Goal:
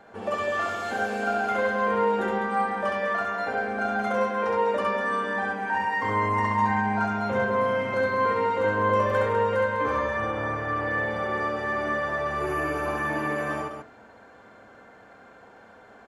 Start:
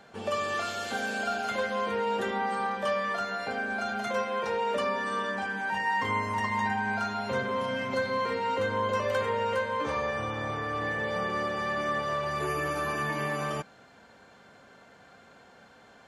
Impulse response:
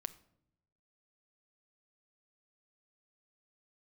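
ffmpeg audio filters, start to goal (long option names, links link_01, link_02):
-filter_complex "[0:a]equalizer=frequency=160:width_type=o:width=0.39:gain=-13.5,aecho=1:1:67.06|201.2:0.794|0.447,asplit=2[link_01][link_02];[1:a]atrim=start_sample=2205,lowpass=2200[link_03];[link_02][link_03]afir=irnorm=-1:irlink=0,volume=7.5dB[link_04];[link_01][link_04]amix=inputs=2:normalize=0,volume=-5.5dB"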